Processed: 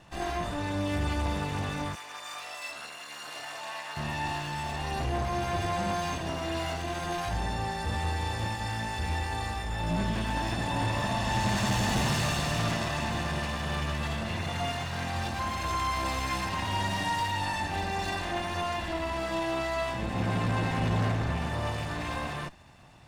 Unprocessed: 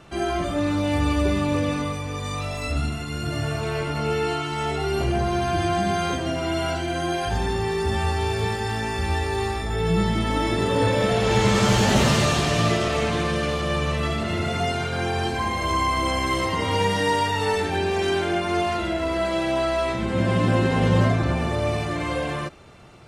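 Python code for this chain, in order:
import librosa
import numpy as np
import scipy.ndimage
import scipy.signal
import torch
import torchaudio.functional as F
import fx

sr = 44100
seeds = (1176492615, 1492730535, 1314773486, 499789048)

y = fx.lower_of_two(x, sr, delay_ms=1.1)
y = 10.0 ** (-15.5 / 20.0) * np.tanh(y / 10.0 ** (-15.5 / 20.0))
y = fx.highpass(y, sr, hz=730.0, slope=12, at=(1.95, 3.97))
y = F.gain(torch.from_numpy(y), -5.0).numpy()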